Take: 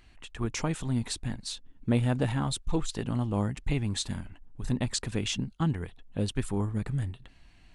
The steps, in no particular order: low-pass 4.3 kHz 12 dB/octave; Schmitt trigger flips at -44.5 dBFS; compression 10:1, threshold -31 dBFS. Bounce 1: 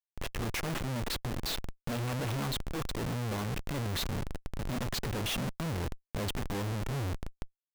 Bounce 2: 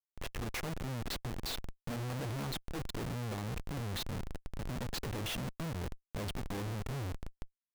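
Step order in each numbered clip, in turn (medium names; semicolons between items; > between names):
low-pass > Schmitt trigger > compression; compression > low-pass > Schmitt trigger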